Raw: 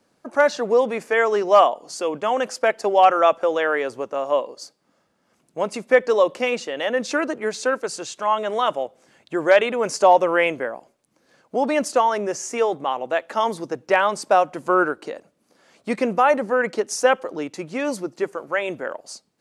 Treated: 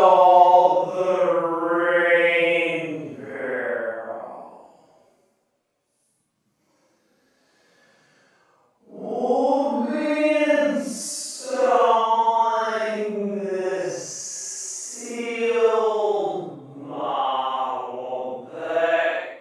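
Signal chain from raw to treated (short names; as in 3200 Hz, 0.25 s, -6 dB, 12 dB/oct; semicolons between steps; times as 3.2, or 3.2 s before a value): Paulstretch 6.1×, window 0.10 s, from 10.05; gain -1 dB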